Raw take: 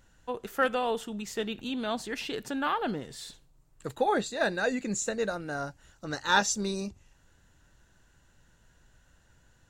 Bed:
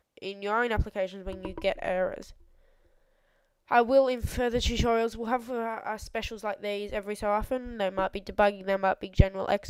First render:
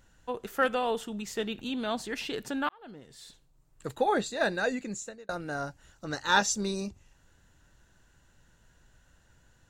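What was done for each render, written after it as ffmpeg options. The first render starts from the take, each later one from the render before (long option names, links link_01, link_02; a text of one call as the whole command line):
ffmpeg -i in.wav -filter_complex "[0:a]asplit=3[link_01][link_02][link_03];[link_01]atrim=end=2.69,asetpts=PTS-STARTPTS,afade=type=out:start_time=2.686:duration=0.004:curve=hsin[link_04];[link_02]atrim=start=2.69:end=5.29,asetpts=PTS-STARTPTS,afade=type=in:duration=1.18,afade=type=out:start_time=1.92:duration=0.68[link_05];[link_03]atrim=start=5.29,asetpts=PTS-STARTPTS,afade=type=in:duration=0.004:curve=hsin[link_06];[link_04][link_05][link_06]concat=n=3:v=0:a=1" out.wav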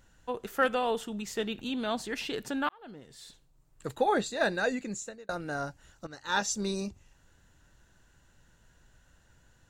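ffmpeg -i in.wav -filter_complex "[0:a]asplit=2[link_01][link_02];[link_01]atrim=end=6.07,asetpts=PTS-STARTPTS,afade=type=out:start_time=6.066:duration=0.004:curve=hsin:silence=0.158489[link_03];[link_02]atrim=start=6.07,asetpts=PTS-STARTPTS,afade=type=in:duration=0.64:silence=0.158489[link_04];[link_03][link_04]concat=n=2:v=0:a=1" out.wav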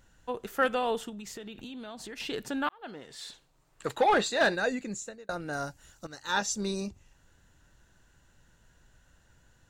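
ffmpeg -i in.wav -filter_complex "[0:a]asettb=1/sr,asplit=3[link_01][link_02][link_03];[link_01]atrim=end=1.094[link_04];[link_02]atrim=start=1.09:end=2.2,asetpts=PTS-STARTPTS,afade=type=in:duration=0.004:curve=qsin,afade=type=out:start_time=1.106:duration=0.004:curve=qsin,acompressor=threshold=-38dB:ratio=10:attack=3.2:release=140:knee=1:detection=peak[link_05];[link_03]atrim=start=2.196[link_06];[link_04][link_05]acrossfade=duration=0.004:curve1=hsin:curve2=qsin[link_07];[link_07][link_06]acrossfade=duration=0.004:curve1=qsin:curve2=hsin,asplit=3[link_08][link_09][link_10];[link_08]afade=type=out:start_time=2.82:duration=0.02[link_11];[link_09]asplit=2[link_12][link_13];[link_13]highpass=frequency=720:poles=1,volume=15dB,asoftclip=type=tanh:threshold=-15dB[link_14];[link_12][link_14]amix=inputs=2:normalize=0,lowpass=frequency=4200:poles=1,volume=-6dB,afade=type=in:start_time=2.82:duration=0.02,afade=type=out:start_time=4.54:duration=0.02[link_15];[link_10]afade=type=in:start_time=4.54:duration=0.02[link_16];[link_11][link_15][link_16]amix=inputs=3:normalize=0,asettb=1/sr,asplit=3[link_17][link_18][link_19];[link_17]atrim=end=5.534[link_20];[link_18]atrim=start=5.53:end=6.32,asetpts=PTS-STARTPTS,afade=type=in:duration=0.004:curve=qsin,afade=type=out:start_time=0.786:duration=0.004:curve=qsin,aemphasis=mode=production:type=cd[link_21];[link_19]atrim=start=6.316[link_22];[link_20][link_21]acrossfade=duration=0.004:curve1=hsin:curve2=qsin[link_23];[link_23][link_22]acrossfade=duration=0.004:curve1=qsin:curve2=hsin" out.wav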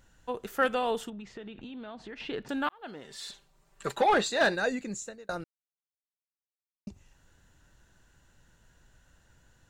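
ffmpeg -i in.wav -filter_complex "[0:a]asettb=1/sr,asplit=3[link_01][link_02][link_03];[link_01]atrim=end=1.104[link_04];[link_02]atrim=start=1.1:end=2.49,asetpts=PTS-STARTPTS,afade=type=in:duration=0.004:curve=qsin,afade=type=out:start_time=1.386:duration=0.004:curve=qsin,lowpass=2800[link_05];[link_03]atrim=start=2.486[link_06];[link_04][link_05]acrossfade=duration=0.004:curve1=hsin:curve2=qsin[link_07];[link_07][link_06]acrossfade=duration=0.004:curve1=qsin:curve2=hsin,asettb=1/sr,asplit=3[link_08][link_09][link_10];[link_08]atrim=end=3.044[link_11];[link_09]atrim=start=3.04:end=4.02,asetpts=PTS-STARTPTS,afade=type=in:duration=0.004:curve=qsin,afade=type=out:start_time=0.976:duration=0.004:curve=qsin,aecho=1:1:5.1:0.65,atrim=end_sample=43218[link_12];[link_10]atrim=start=4.016[link_13];[link_11][link_12]acrossfade=duration=0.004:curve1=hsin:curve2=qsin[link_14];[link_14][link_13]acrossfade=duration=0.004:curve1=qsin:curve2=hsin,asplit=3[link_15][link_16][link_17];[link_15]atrim=end=5.44,asetpts=PTS-STARTPTS,afade=type=out:start_time=5.436:duration=0.004:curve=hsin[link_18];[link_16]atrim=start=5.44:end=6.87,asetpts=PTS-STARTPTS,volume=0[link_19];[link_17]atrim=start=6.87,asetpts=PTS-STARTPTS,afade=type=in:duration=0.004:curve=hsin[link_20];[link_18][link_19][link_20]concat=n=3:v=0:a=1" out.wav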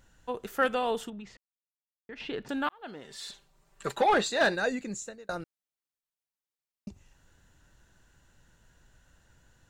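ffmpeg -i in.wav -filter_complex "[0:a]asplit=3[link_01][link_02][link_03];[link_01]atrim=end=1.37,asetpts=PTS-STARTPTS,afade=type=out:start_time=1.366:duration=0.004:curve=hsin[link_04];[link_02]atrim=start=1.37:end=2.09,asetpts=PTS-STARTPTS,volume=0[link_05];[link_03]atrim=start=2.09,asetpts=PTS-STARTPTS,afade=type=in:duration=0.004:curve=hsin[link_06];[link_04][link_05][link_06]concat=n=3:v=0:a=1" out.wav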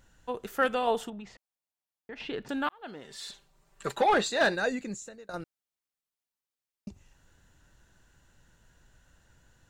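ffmpeg -i in.wav -filter_complex "[0:a]asettb=1/sr,asplit=3[link_01][link_02][link_03];[link_01]atrim=end=0.874[link_04];[link_02]atrim=start=0.87:end=2.22,asetpts=PTS-STARTPTS,afade=type=in:duration=0.004:curve=qsin,afade=type=out:start_time=1.346:duration=0.004:curve=qsin,equalizer=frequency=750:width_type=o:width=0.84:gain=7[link_05];[link_03]atrim=start=2.216[link_06];[link_04][link_05]acrossfade=duration=0.004:curve1=hsin:curve2=qsin[link_07];[link_07][link_06]acrossfade=duration=0.004:curve1=qsin:curve2=hsin,asettb=1/sr,asplit=3[link_08][link_09][link_10];[link_08]atrim=end=4.944[link_11];[link_09]atrim=start=4.94:end=5.34,asetpts=PTS-STARTPTS,afade=type=in:duration=0.004:curve=qsin,afade=type=out:start_time=0.396:duration=0.004:curve=qsin,acompressor=threshold=-42dB:ratio=2:attack=3.2:release=140:knee=1:detection=peak[link_12];[link_10]atrim=start=5.336[link_13];[link_11][link_12]acrossfade=duration=0.004:curve1=hsin:curve2=qsin[link_14];[link_14][link_13]acrossfade=duration=0.004:curve1=qsin:curve2=hsin" out.wav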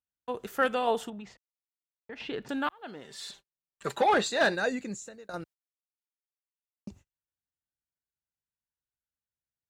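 ffmpeg -i in.wav -af "agate=range=-39dB:threshold=-51dB:ratio=16:detection=peak,highpass=52" out.wav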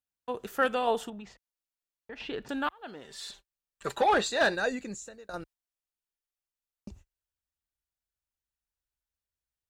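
ffmpeg -i in.wav -af "bandreject=frequency=2100:width=21,asubboost=boost=5.5:cutoff=61" out.wav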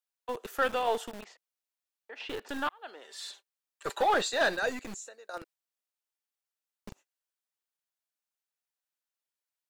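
ffmpeg -i in.wav -filter_complex "[0:a]acrossover=split=370|1400|2200[link_01][link_02][link_03][link_04];[link_01]acrusher=bits=4:dc=4:mix=0:aa=0.000001[link_05];[link_05][link_02][link_03][link_04]amix=inputs=4:normalize=0,asoftclip=type=tanh:threshold=-16.5dB" out.wav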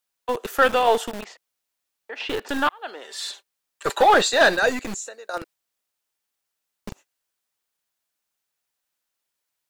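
ffmpeg -i in.wav -af "volume=10.5dB" out.wav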